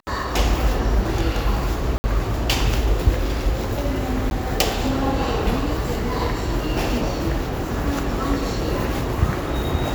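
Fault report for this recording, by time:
1.98–2.04 gap 60 ms
4.3–4.31 gap 11 ms

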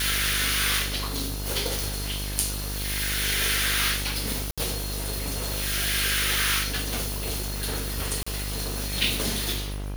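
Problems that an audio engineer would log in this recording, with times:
buzz 50 Hz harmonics 34 -32 dBFS
4.51–4.58 gap 66 ms
8.23–8.27 gap 35 ms

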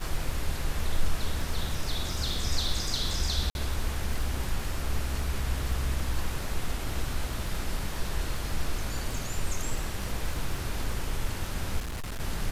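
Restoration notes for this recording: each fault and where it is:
crackle 35/s -35 dBFS
3.5–3.55 gap 51 ms
11.79–12.21 clipped -31.5 dBFS

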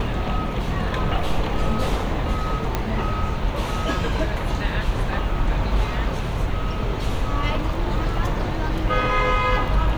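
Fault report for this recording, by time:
2.75 pop -8 dBFS

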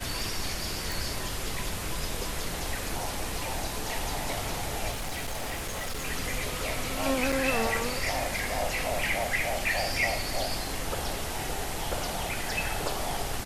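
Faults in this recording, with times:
0.92 pop
4.9–6.06 clipped -29.5 dBFS
7.32–7.33 gap 5.2 ms

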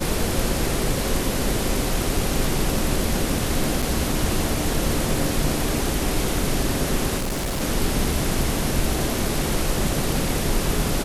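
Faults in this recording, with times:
3.82–3.83 gap 6.1 ms
7.17–7.62 clipped -22 dBFS

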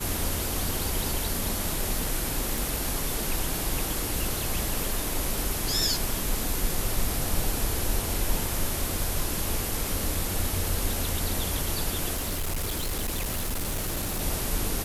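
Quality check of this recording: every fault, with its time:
2.58 pop
12.15–14.22 clipped -25.5 dBFS

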